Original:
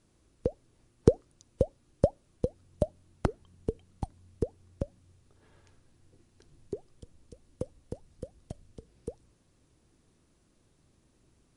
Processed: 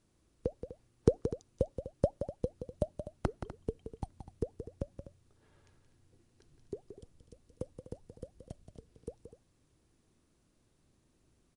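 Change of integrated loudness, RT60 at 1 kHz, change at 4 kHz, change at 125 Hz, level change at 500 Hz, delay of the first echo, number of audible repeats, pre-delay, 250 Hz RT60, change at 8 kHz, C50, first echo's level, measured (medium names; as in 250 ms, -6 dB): -4.5 dB, no reverb, -4.5 dB, -4.5 dB, -4.5 dB, 175 ms, 2, no reverb, no reverb, -4.5 dB, no reverb, -9.5 dB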